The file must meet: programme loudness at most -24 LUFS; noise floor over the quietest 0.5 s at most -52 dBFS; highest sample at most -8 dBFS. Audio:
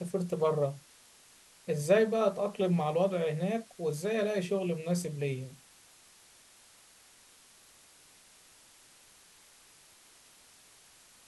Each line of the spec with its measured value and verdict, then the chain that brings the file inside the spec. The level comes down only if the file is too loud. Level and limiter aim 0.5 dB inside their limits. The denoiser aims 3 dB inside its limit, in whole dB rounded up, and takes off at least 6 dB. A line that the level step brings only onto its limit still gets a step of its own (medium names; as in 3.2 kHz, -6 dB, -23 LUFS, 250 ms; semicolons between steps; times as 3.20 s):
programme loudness -31.0 LUFS: pass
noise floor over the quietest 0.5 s -59 dBFS: pass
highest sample -13.0 dBFS: pass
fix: none needed